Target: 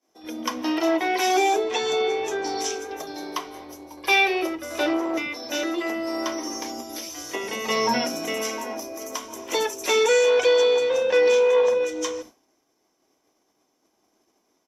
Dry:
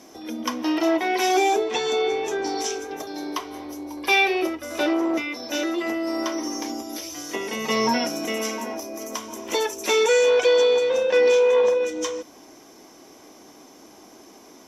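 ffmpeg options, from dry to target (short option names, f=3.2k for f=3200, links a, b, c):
-filter_complex "[0:a]acrossover=split=240[a][b];[a]adelay=80[c];[c][b]amix=inputs=2:normalize=0,agate=range=-33dB:threshold=-35dB:ratio=3:detection=peak"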